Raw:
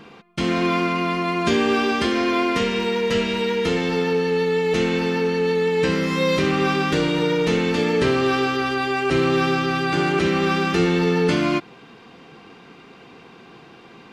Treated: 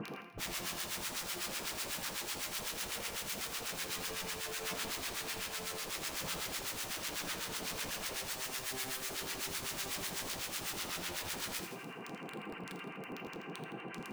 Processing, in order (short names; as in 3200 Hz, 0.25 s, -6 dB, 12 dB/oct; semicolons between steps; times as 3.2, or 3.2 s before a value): FFT band-pass 110–3100 Hz; upward compressor, threshold -40 dBFS; limiter -15 dBFS, peak gain reduction 7 dB; reverse; compressor 16:1, threshold -25 dBFS, peak gain reduction 7.5 dB; reverse; soft clip -28 dBFS, distortion -13 dB; flange 0.16 Hz, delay 6.6 ms, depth 2.8 ms, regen -88%; wrapped overs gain 39.5 dB; harmonic tremolo 8 Hz, depth 100%, crossover 1000 Hz; thinning echo 82 ms, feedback 51%, level -10 dB; on a send at -10.5 dB: reverb, pre-delay 3 ms; on the sum: gain +8 dB